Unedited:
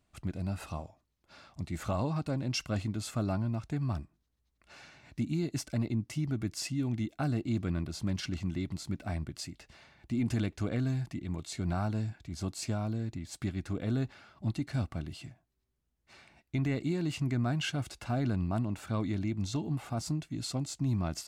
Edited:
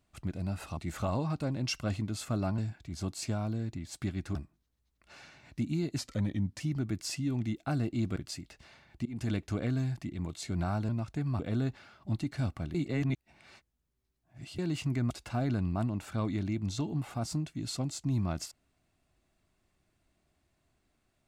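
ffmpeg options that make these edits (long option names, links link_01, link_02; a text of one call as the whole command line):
ffmpeg -i in.wav -filter_complex "[0:a]asplit=13[link_01][link_02][link_03][link_04][link_05][link_06][link_07][link_08][link_09][link_10][link_11][link_12][link_13];[link_01]atrim=end=0.772[link_14];[link_02]atrim=start=1.628:end=3.442[link_15];[link_03]atrim=start=11.978:end=13.752[link_16];[link_04]atrim=start=3.948:end=5.584[link_17];[link_05]atrim=start=5.58:end=6.13,asetpts=PTS-STARTPTS,asetrate=38808,aresample=44100,atrim=end_sample=27562,asetpts=PTS-STARTPTS[link_18];[link_06]atrim=start=6.126:end=7.692[link_19];[link_07]atrim=start=9.258:end=10.15,asetpts=PTS-STARTPTS,afade=type=out:start_time=0.888:duration=0.004:curve=hsin:silence=0.0707946[link_20];[link_08]atrim=start=10.15:end=11.982,asetpts=PTS-STARTPTS,afade=type=in:duration=0.28:silence=0.0707946[link_21];[link_09]atrim=start=3.438:end=3.952[link_22];[link_10]atrim=start=13.748:end=15.102[link_23];[link_11]atrim=start=15.098:end=16.942,asetpts=PTS-STARTPTS,areverse[link_24];[link_12]atrim=start=16.938:end=17.462[link_25];[link_13]atrim=start=17.858[link_26];[link_14][link_15]acrossfade=duration=0.004:curve1=hsin:curve2=hsin[link_27];[link_27][link_16]acrossfade=duration=0.004:curve1=hsin:curve2=hsin[link_28];[link_28][link_17]acrossfade=duration=0.004:curve1=hsin:curve2=hsin[link_29];[link_29][link_18]acrossfade=duration=0.004:curve1=hsin:curve2=hsin[link_30];[link_30][link_19]acrossfade=duration=0.004:curve1=hsin:curve2=hsin[link_31];[link_20][link_21]concat=n=2:v=0:a=1[link_32];[link_31][link_32]acrossfade=duration=0.004:curve1=hsin:curve2=hsin[link_33];[link_33][link_22]acrossfade=duration=0.004:curve1=hsin:curve2=hsin[link_34];[link_34][link_23]acrossfade=duration=0.004:curve1=hsin:curve2=hsin[link_35];[link_35][link_24]acrossfade=duration=0.004:curve1=hsin:curve2=hsin[link_36];[link_36][link_25]acrossfade=duration=0.004:curve1=hsin:curve2=hsin[link_37];[link_37][link_26]acrossfade=duration=0.004:curve1=hsin:curve2=hsin" out.wav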